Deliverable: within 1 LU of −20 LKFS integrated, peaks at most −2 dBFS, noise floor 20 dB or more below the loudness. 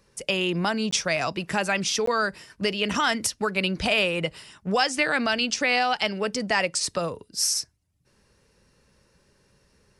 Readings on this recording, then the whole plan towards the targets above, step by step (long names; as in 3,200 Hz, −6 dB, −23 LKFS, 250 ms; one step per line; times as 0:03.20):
number of dropouts 2; longest dropout 14 ms; integrated loudness −24.5 LKFS; sample peak −9.5 dBFS; target loudness −20.0 LKFS
→ repair the gap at 0:00.91/0:02.06, 14 ms
level +4.5 dB